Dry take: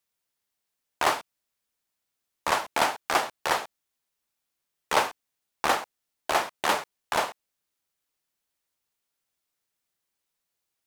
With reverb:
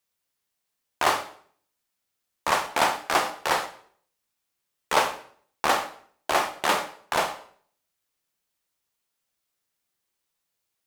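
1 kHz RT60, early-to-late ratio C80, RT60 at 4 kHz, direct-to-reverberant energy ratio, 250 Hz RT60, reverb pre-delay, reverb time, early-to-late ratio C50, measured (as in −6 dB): 0.50 s, 15.0 dB, 0.50 s, 6.5 dB, 0.60 s, 13 ms, 0.55 s, 12.0 dB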